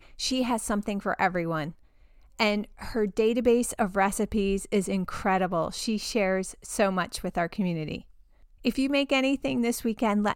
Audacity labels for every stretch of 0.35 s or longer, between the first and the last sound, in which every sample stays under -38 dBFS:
1.710000	2.390000	silence
8.000000	8.650000	silence